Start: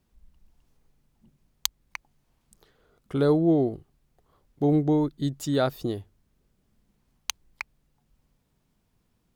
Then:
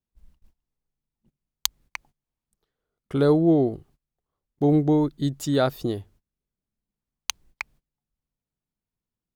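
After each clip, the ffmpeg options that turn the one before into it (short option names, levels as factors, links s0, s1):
-af "agate=range=0.0794:threshold=0.00178:ratio=16:detection=peak,volume=1.33"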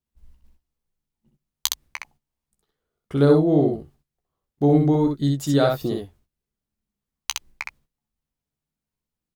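-filter_complex "[0:a]asplit=2[s0][s1];[s1]adelay=14,volume=0.376[s2];[s0][s2]amix=inputs=2:normalize=0,asplit=2[s3][s4];[s4]aecho=0:1:13|64:0.15|0.668[s5];[s3][s5]amix=inputs=2:normalize=0"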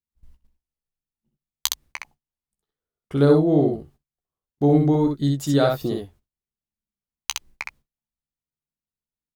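-af "agate=range=0.282:threshold=0.00355:ratio=16:detection=peak"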